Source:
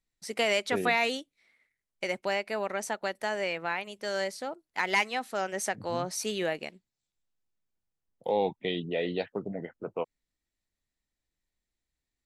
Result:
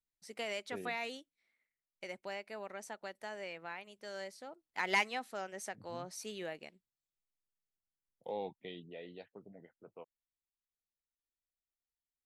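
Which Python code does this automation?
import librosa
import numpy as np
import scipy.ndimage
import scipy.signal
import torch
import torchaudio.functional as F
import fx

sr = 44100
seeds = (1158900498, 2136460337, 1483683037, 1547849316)

y = fx.gain(x, sr, db=fx.line((4.48, -13.0), (4.94, -4.0), (5.52, -12.0), (8.29, -12.0), (9.12, -19.0)))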